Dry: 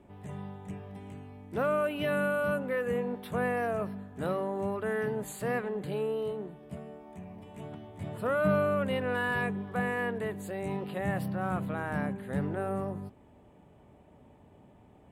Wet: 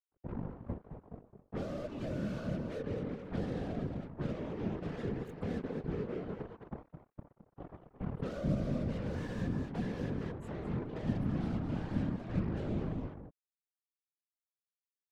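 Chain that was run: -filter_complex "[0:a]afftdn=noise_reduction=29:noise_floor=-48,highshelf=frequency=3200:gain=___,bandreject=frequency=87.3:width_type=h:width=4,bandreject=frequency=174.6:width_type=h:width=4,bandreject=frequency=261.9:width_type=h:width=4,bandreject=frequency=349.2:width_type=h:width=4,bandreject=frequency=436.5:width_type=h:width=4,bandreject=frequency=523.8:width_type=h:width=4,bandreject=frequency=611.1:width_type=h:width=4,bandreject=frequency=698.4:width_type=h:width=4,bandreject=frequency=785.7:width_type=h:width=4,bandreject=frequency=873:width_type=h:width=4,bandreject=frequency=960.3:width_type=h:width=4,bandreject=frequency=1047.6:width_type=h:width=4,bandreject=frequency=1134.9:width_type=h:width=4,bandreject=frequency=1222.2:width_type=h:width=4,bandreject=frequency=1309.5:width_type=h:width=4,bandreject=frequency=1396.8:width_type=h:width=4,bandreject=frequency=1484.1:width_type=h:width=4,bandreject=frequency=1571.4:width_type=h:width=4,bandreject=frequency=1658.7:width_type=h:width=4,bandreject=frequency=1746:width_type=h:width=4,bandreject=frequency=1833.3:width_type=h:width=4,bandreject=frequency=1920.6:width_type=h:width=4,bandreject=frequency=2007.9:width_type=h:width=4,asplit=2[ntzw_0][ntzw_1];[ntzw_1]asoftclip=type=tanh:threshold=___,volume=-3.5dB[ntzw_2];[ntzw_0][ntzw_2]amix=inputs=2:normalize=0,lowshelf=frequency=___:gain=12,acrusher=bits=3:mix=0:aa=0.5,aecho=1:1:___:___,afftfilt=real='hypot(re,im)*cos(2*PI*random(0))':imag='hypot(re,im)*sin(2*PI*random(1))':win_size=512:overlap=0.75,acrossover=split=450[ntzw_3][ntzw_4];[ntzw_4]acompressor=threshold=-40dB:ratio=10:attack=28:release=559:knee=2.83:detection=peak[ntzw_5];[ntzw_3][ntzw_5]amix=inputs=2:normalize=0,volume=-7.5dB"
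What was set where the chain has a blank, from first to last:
-2.5, -26dB, 330, 215, 0.335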